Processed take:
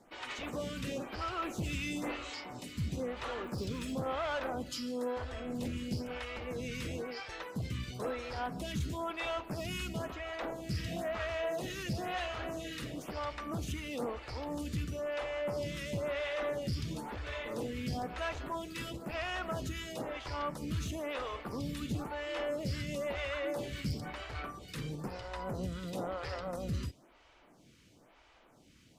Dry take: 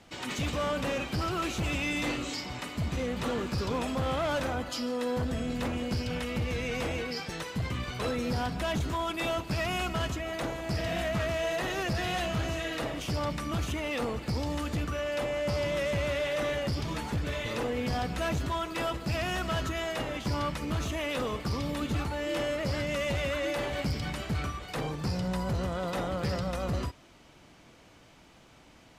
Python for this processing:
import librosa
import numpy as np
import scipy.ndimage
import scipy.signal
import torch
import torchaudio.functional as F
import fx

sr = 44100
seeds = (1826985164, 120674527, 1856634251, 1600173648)

y = fx.dmg_crackle(x, sr, seeds[0], per_s=73.0, level_db=-40.0, at=(3.15, 3.92), fade=0.02)
y = fx.stagger_phaser(y, sr, hz=1.0)
y = y * librosa.db_to_amplitude(-3.0)